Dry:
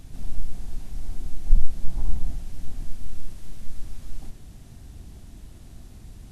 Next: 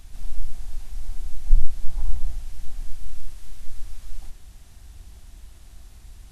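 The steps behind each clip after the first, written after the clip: ten-band EQ 125 Hz -11 dB, 250 Hz -10 dB, 500 Hz -6 dB; gain +1.5 dB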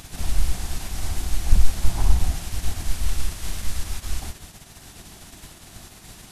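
spectral limiter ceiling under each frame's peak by 23 dB; gain -2 dB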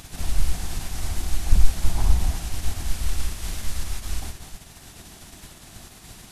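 reverse delay 0.198 s, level -10 dB; gain -1 dB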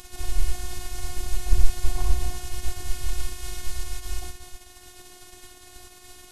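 robotiser 362 Hz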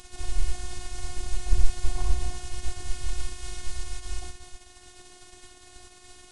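downsampling 22050 Hz; gain -2.5 dB

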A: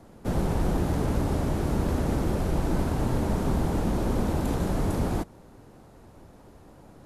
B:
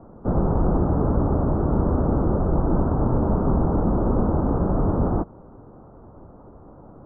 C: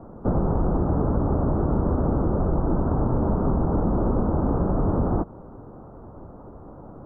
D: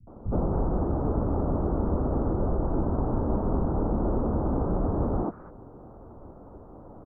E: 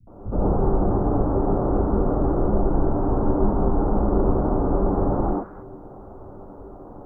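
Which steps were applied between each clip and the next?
elliptic low-pass 1300 Hz, stop band 60 dB; gain +6 dB
compressor, threshold -21 dBFS, peak gain reduction 6.5 dB; gain +3 dB
three bands offset in time lows, mids, highs 70/270 ms, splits 150/1500 Hz; gain -3 dB
non-linear reverb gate 0.15 s rising, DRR -5 dB

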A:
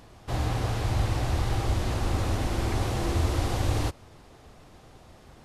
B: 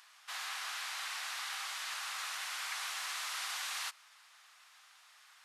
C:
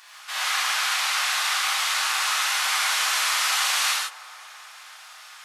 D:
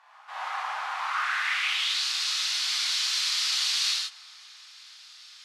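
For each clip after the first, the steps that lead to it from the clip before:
inverse Chebyshev high-pass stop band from 210 Hz, stop band 80 dB
dark delay 0.15 s, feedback 78%, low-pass 1200 Hz, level -15.5 dB; non-linear reverb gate 0.21 s flat, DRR -8 dB; gain +8 dB
band-pass sweep 820 Hz -> 4400 Hz, 0.92–2.04; gain +2.5 dB

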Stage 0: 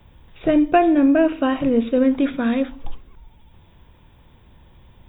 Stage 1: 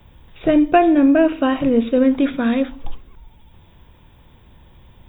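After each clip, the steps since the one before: tone controls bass 0 dB, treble +3 dB; gain +2 dB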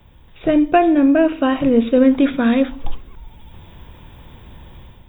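AGC gain up to 9 dB; gain -1 dB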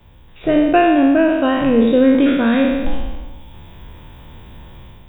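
spectral trails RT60 1.32 s; gain -1 dB

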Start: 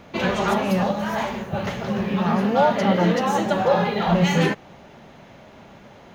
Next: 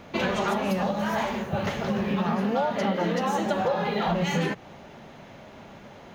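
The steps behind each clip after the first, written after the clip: notches 60/120/180 Hz; compressor, threshold -22 dBFS, peak gain reduction 9 dB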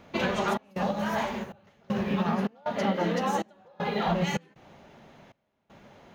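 step gate "xxx.xxxx.." 79 bpm -24 dB; upward expander 1.5:1, over -36 dBFS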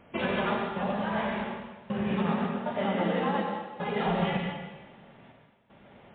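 reverb RT60 1.2 s, pre-delay 86 ms, DRR 0.5 dB; gain -2.5 dB; MP3 24 kbps 8000 Hz

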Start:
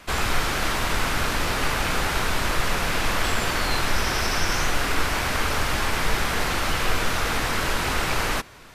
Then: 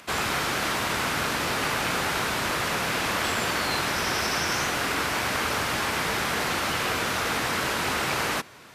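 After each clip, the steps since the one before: HPF 120 Hz 12 dB/oct; upward compressor, threshold -49 dBFS; gain -1 dB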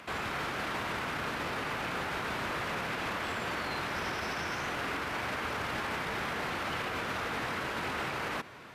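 tone controls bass 0 dB, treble -11 dB; limiter -26.5 dBFS, peak gain reduction 11 dB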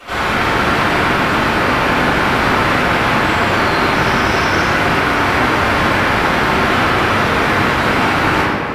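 reverb RT60 2.3 s, pre-delay 3 ms, DRR -19 dB; gain -1 dB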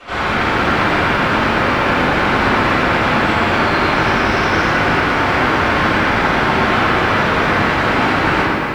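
air absorption 67 m; lo-fi delay 0.119 s, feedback 80%, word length 7-bit, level -11 dB; gain -1 dB

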